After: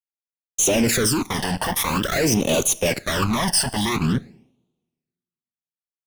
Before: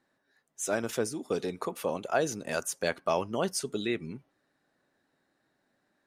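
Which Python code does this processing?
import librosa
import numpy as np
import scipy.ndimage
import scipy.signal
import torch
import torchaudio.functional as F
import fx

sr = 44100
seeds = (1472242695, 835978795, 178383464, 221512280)

y = fx.fuzz(x, sr, gain_db=48.0, gate_db=-48.0)
y = fx.rev_double_slope(y, sr, seeds[0], early_s=0.71, late_s=1.8, knee_db=-27, drr_db=17.5)
y = fx.phaser_stages(y, sr, stages=12, low_hz=390.0, high_hz=1700.0, hz=0.48, feedback_pct=30)
y = fx.resample_bad(y, sr, factor=2, down='none', up='hold', at=(1.64, 2.19))
y = y * 10.0 ** (-1.5 / 20.0)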